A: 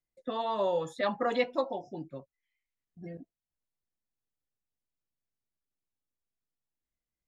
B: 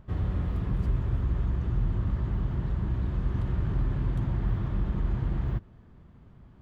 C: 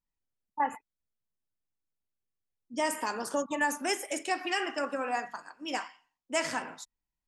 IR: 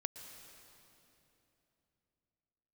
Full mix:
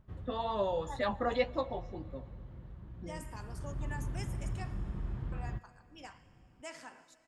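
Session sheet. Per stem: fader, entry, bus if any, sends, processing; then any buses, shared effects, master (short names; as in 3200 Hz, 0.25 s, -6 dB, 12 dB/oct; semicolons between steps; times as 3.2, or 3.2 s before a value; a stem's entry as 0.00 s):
-0.5 dB, 0.00 s, send -11.5 dB, flange 2 Hz, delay 7.8 ms, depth 5.3 ms, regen +55%
-10.5 dB, 0.00 s, send -21 dB, auto duck -11 dB, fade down 0.30 s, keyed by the first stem
-20.0 dB, 0.30 s, muted 4.74–5.32, send -3.5 dB, dry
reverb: on, RT60 3.2 s, pre-delay 0.108 s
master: dry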